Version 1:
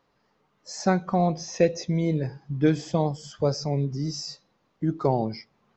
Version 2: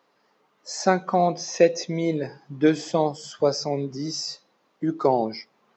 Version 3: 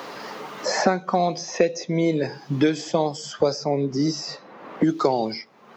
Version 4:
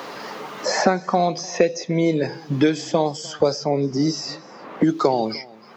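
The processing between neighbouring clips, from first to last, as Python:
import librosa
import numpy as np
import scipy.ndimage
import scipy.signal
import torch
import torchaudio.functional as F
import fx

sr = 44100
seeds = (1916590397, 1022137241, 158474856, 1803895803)

y1 = scipy.signal.sosfilt(scipy.signal.butter(2, 280.0, 'highpass', fs=sr, output='sos'), x)
y1 = y1 * 10.0 ** (4.5 / 20.0)
y2 = fx.band_squash(y1, sr, depth_pct=100)
y3 = y2 + 10.0 ** (-23.0 / 20.0) * np.pad(y2, (int(301 * sr / 1000.0), 0))[:len(y2)]
y3 = y3 * 10.0 ** (2.0 / 20.0)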